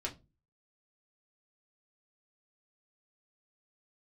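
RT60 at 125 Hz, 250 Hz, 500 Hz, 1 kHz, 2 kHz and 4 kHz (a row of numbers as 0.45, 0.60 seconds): 0.50, 0.40, 0.30, 0.20, 0.20, 0.20 seconds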